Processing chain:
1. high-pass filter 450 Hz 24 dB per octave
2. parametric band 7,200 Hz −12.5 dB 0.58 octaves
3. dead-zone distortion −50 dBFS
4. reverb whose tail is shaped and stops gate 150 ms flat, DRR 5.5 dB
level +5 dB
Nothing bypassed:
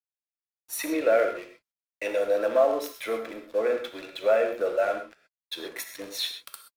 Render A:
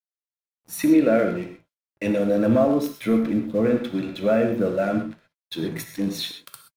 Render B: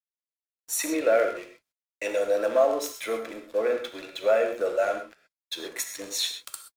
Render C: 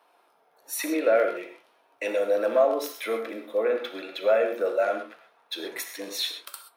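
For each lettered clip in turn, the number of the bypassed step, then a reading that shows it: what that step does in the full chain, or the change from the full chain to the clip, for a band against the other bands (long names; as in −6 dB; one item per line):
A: 1, 250 Hz band +16.0 dB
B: 2, 8 kHz band +7.5 dB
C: 3, distortion level −21 dB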